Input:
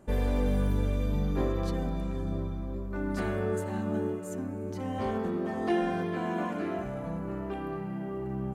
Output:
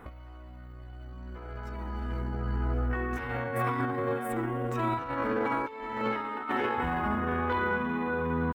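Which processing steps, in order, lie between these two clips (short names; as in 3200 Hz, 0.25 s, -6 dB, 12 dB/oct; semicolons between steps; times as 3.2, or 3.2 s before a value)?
graphic EQ 125/250/500/1000/4000/8000 Hz -6/-5/-7/+7/-8/-11 dB; negative-ratio compressor -37 dBFS, ratio -0.5; pitch shift +4 st; gain +6 dB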